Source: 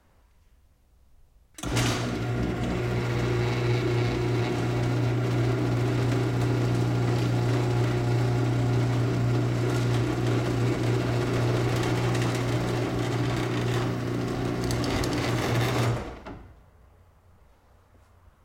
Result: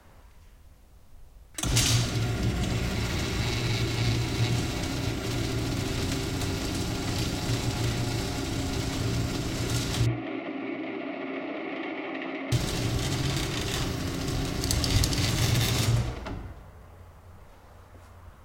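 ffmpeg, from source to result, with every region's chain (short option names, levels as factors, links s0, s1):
-filter_complex "[0:a]asettb=1/sr,asplit=3[s0][s1][s2];[s0]atrim=end=10.064[s3];[s1]atrim=start=10.06:end=12.52,asetpts=PTS-STARTPTS,afade=t=in:d=0.004:c=qsin,afade=t=out:st=2.456:d=0.004:c=qsin,highpass=f=280:w=0.5412,highpass=f=280:w=1.3066,equalizer=f=280:t=q:w=4:g=4,equalizer=f=450:t=q:w=4:g=-6,equalizer=f=640:t=q:w=4:g=4,equalizer=f=930:t=q:w=4:g=-6,equalizer=f=1500:t=q:w=4:g=-6,equalizer=f=2200:t=q:w=4:g=4,lowpass=f=2300:w=0.5412,lowpass=f=2300:w=1.3066,bandreject=f=1600:w=7.4[s4];[s2]atrim=start=12.516[s5];[s3][s4]acrossfade=d=0.004:c1=hsin:c2=qsin[s6];[s6][s5]acrossfade=d=0.004:c1=qsin:c2=hsin,bandreject=f=60:t=h:w=6,bandreject=f=120:t=h:w=6,bandreject=f=180:t=h:w=6,bandreject=f=240:t=h:w=6,bandreject=f=300:t=h:w=6,bandreject=f=360:t=h:w=6,bandreject=f=420:t=h:w=6,bandreject=f=480:t=h:w=6,acrossover=split=170|3000[s7][s8][s9];[s8]acompressor=threshold=0.00562:ratio=4[s10];[s7][s10][s9]amix=inputs=3:normalize=0,volume=2.66"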